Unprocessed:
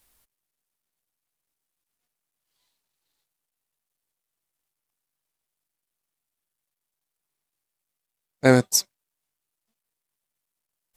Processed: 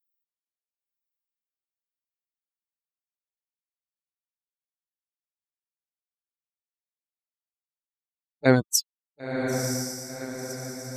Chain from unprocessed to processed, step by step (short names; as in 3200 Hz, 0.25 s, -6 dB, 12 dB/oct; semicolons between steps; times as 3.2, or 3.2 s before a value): per-bin expansion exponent 3; diffused feedback echo 1.009 s, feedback 50%, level -5 dB